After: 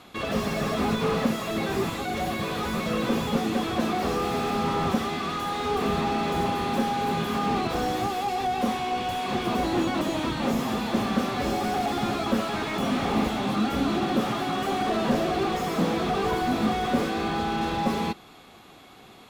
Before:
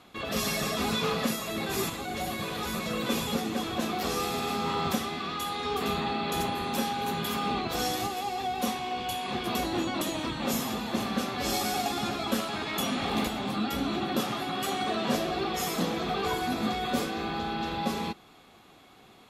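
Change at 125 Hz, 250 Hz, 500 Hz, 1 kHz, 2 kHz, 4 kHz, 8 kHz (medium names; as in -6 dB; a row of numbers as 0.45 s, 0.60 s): +5.5 dB, +5.5 dB, +5.0 dB, +4.5 dB, +2.5 dB, -1.0 dB, -4.0 dB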